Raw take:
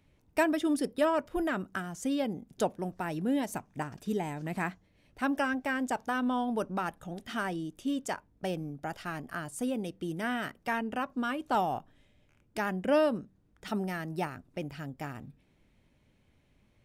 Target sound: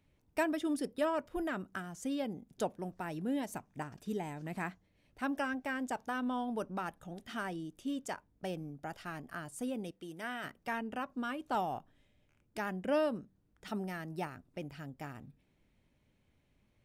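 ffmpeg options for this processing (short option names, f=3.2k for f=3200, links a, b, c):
-filter_complex "[0:a]asettb=1/sr,asplit=3[a][b][c];[a]atrim=end=9.914[d];[b]atrim=start=9.91:end=10.44,asetpts=PTS-STARTPTS,afade=t=in:d=0.004:c=qsin,afade=t=out:st=0.526:d=0.004:c=qsin,lowshelf=f=290:g=-11[e];[c]atrim=start=10.436[f];[d][e]acrossfade=d=0.004:c1=hsin:c2=qsin[g];[g][f]acrossfade=d=0.004:c1=qsin:c2=hsin,volume=-5.5dB"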